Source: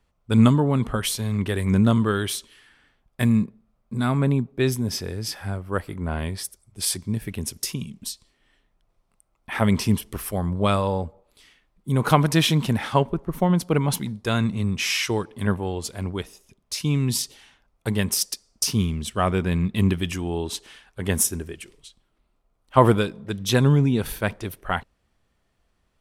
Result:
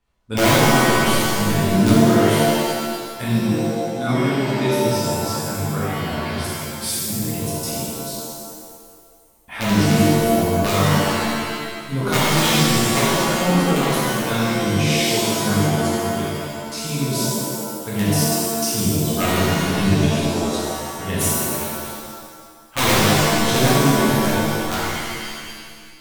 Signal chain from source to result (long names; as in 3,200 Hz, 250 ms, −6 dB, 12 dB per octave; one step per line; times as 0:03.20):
hum removal 86.28 Hz, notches 27
wrap-around overflow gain 9.5 dB
reverb with rising layers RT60 1.7 s, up +7 semitones, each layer −2 dB, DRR −8 dB
level −6.5 dB